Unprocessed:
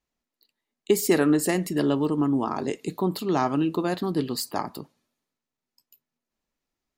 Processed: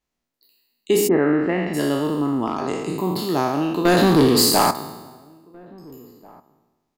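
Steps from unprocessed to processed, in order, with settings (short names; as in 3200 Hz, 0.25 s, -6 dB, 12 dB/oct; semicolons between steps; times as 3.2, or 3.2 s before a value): spectral trails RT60 1.23 s; 1.07–1.73 LPF 1500 Hz -> 3200 Hz 24 dB/oct; 2.46–2.92 hard clip -14.5 dBFS, distortion -35 dB; 3.85–4.71 sample leveller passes 3; outdoor echo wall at 290 m, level -26 dB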